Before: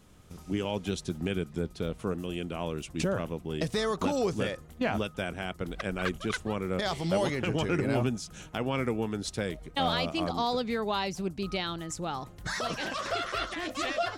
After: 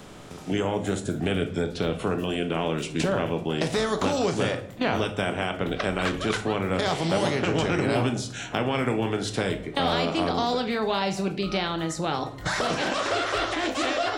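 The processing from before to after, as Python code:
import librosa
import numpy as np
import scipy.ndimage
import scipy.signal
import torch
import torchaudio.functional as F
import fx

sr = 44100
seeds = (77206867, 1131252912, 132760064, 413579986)

y = fx.bin_compress(x, sr, power=0.6)
y = fx.noise_reduce_blind(y, sr, reduce_db=13)
y = fx.spec_box(y, sr, start_s=0.6, length_s=0.57, low_hz=2200.0, high_hz=6400.0, gain_db=-10)
y = fx.room_shoebox(y, sr, seeds[0], volume_m3=65.0, walls='mixed', distance_m=0.32)
y = fx.band_squash(y, sr, depth_pct=40)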